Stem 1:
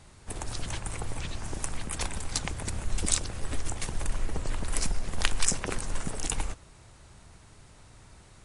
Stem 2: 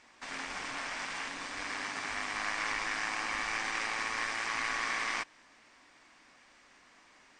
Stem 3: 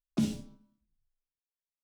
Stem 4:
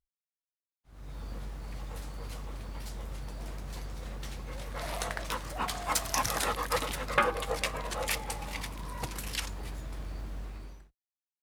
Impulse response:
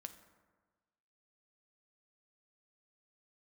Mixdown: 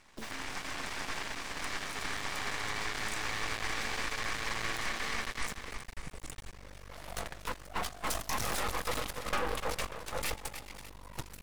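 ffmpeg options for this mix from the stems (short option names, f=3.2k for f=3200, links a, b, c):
-filter_complex "[0:a]volume=-12dB[a];[1:a]volume=2.5dB,asplit=2[b][c];[c]volume=-4.5dB[d];[2:a]highpass=330,acrusher=bits=4:dc=4:mix=0:aa=0.000001,volume=-6.5dB[e];[3:a]agate=range=-17dB:threshold=-32dB:ratio=16:detection=peak,acontrast=85,aeval=exprs='clip(val(0),-1,0.188)':c=same,adelay=2150,volume=3dB,asplit=2[f][g];[g]volume=-19.5dB[h];[d][h]amix=inputs=2:normalize=0,aecho=0:1:296|592|888|1184|1480|1776:1|0.43|0.185|0.0795|0.0342|0.0147[i];[a][b][e][f][i]amix=inputs=5:normalize=0,aeval=exprs='max(val(0),0)':c=same,alimiter=limit=-22dB:level=0:latency=1:release=23"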